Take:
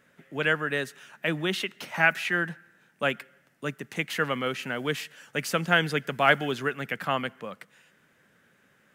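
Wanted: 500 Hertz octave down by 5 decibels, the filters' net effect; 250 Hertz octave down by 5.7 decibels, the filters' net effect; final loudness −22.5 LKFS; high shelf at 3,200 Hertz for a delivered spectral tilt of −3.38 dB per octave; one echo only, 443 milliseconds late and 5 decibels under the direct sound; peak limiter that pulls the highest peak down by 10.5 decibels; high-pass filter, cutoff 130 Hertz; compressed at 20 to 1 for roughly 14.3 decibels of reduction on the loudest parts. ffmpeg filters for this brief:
ffmpeg -i in.wav -af "highpass=130,equalizer=frequency=250:width_type=o:gain=-6,equalizer=frequency=500:width_type=o:gain=-5,highshelf=frequency=3200:gain=7,acompressor=threshold=-28dB:ratio=20,alimiter=level_in=0.5dB:limit=-24dB:level=0:latency=1,volume=-0.5dB,aecho=1:1:443:0.562,volume=13.5dB" out.wav

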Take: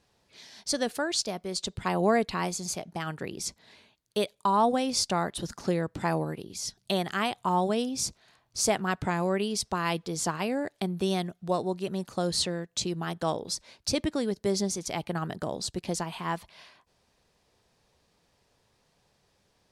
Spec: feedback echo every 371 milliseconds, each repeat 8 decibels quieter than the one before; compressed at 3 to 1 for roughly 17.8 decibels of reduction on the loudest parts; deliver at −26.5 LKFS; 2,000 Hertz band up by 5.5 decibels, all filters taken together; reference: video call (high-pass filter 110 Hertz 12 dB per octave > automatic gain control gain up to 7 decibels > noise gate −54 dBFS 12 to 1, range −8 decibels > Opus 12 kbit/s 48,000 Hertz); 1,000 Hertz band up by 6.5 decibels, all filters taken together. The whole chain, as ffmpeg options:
ffmpeg -i in.wav -af "equalizer=frequency=1000:width_type=o:gain=7,equalizer=frequency=2000:width_type=o:gain=4.5,acompressor=threshold=-39dB:ratio=3,highpass=110,aecho=1:1:371|742|1113|1484|1855:0.398|0.159|0.0637|0.0255|0.0102,dynaudnorm=maxgain=7dB,agate=range=-8dB:threshold=-54dB:ratio=12,volume=9.5dB" -ar 48000 -c:a libopus -b:a 12k out.opus

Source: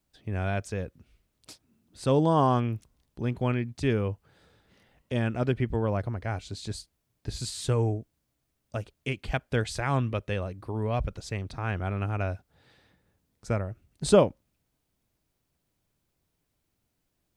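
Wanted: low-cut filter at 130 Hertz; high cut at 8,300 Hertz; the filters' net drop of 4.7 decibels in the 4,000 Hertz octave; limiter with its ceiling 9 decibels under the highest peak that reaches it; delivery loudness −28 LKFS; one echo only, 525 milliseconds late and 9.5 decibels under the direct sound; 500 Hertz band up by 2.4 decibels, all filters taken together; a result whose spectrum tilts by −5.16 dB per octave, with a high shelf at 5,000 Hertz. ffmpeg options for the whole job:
ffmpeg -i in.wav -af "highpass=130,lowpass=8300,equalizer=frequency=500:width_type=o:gain=3,equalizer=frequency=4000:width_type=o:gain=-3.5,highshelf=frequency=5000:gain=-5,alimiter=limit=-15dB:level=0:latency=1,aecho=1:1:525:0.335,volume=3dB" out.wav

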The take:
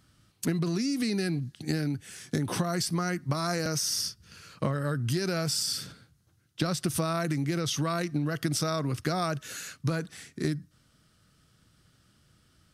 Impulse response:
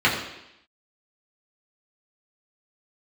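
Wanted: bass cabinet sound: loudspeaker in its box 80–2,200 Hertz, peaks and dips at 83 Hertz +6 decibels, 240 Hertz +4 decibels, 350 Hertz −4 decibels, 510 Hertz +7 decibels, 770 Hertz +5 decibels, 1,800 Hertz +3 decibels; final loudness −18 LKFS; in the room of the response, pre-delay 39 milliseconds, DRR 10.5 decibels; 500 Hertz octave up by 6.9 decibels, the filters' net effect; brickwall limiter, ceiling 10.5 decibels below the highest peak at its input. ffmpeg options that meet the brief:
-filter_complex "[0:a]equalizer=frequency=500:width_type=o:gain=4,alimiter=limit=-22dB:level=0:latency=1,asplit=2[link_01][link_02];[1:a]atrim=start_sample=2205,adelay=39[link_03];[link_02][link_03]afir=irnorm=-1:irlink=0,volume=-30dB[link_04];[link_01][link_04]amix=inputs=2:normalize=0,highpass=frequency=80:width=0.5412,highpass=frequency=80:width=1.3066,equalizer=frequency=83:width_type=q:width=4:gain=6,equalizer=frequency=240:width_type=q:width=4:gain=4,equalizer=frequency=350:width_type=q:width=4:gain=-4,equalizer=frequency=510:width_type=q:width=4:gain=7,equalizer=frequency=770:width_type=q:width=4:gain=5,equalizer=frequency=1800:width_type=q:width=4:gain=3,lowpass=frequency=2200:width=0.5412,lowpass=frequency=2200:width=1.3066,volume=13.5dB"

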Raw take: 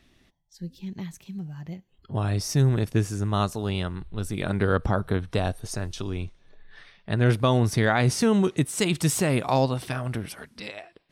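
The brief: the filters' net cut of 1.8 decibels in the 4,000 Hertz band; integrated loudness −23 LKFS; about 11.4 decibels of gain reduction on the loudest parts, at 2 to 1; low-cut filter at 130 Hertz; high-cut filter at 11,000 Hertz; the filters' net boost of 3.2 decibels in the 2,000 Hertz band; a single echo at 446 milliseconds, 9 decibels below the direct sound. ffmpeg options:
ffmpeg -i in.wav -af "highpass=130,lowpass=11000,equalizer=frequency=2000:width_type=o:gain=5,equalizer=frequency=4000:width_type=o:gain=-4,acompressor=threshold=-38dB:ratio=2,aecho=1:1:446:0.355,volume=13.5dB" out.wav

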